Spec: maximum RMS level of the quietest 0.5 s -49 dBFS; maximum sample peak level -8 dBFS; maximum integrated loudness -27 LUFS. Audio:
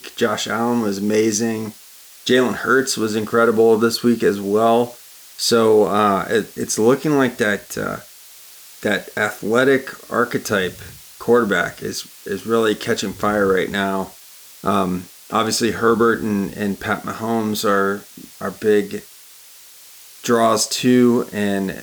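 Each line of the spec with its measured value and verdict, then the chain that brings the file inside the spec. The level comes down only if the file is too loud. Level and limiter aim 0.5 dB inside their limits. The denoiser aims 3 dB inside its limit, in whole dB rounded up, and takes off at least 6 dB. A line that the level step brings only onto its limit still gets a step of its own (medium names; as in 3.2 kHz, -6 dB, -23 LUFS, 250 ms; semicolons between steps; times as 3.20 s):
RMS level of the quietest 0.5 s -44 dBFS: fail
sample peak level -4.5 dBFS: fail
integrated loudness -18.5 LUFS: fail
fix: trim -9 dB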